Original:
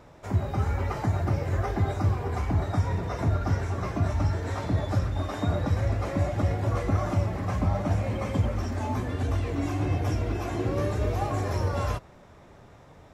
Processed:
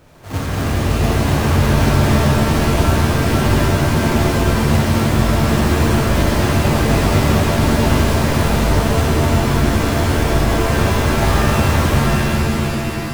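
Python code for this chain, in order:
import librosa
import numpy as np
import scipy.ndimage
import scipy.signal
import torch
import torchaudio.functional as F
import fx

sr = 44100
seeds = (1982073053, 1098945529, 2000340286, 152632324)

y = fx.halfwave_hold(x, sr)
y = fx.rev_shimmer(y, sr, seeds[0], rt60_s=3.8, semitones=7, shimmer_db=-2, drr_db=-8.0)
y = y * librosa.db_to_amplitude(-4.0)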